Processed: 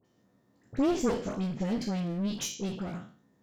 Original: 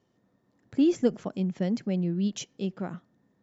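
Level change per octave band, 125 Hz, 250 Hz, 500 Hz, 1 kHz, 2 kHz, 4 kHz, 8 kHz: −3.0 dB, −3.5 dB, −2.5 dB, +5.5 dB, +2.5 dB, +2.0 dB, can't be measured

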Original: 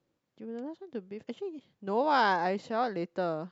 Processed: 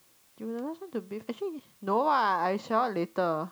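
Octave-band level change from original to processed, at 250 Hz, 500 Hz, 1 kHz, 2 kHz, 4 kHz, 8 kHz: +2.0 dB, +1.5 dB, +2.0 dB, −2.0 dB, −2.5 dB, can't be measured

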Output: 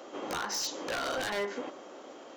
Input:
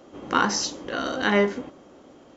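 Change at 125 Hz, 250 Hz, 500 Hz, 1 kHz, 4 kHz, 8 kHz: −16.5 dB, −14.5 dB, −9.0 dB, −10.0 dB, −6.0 dB, can't be measured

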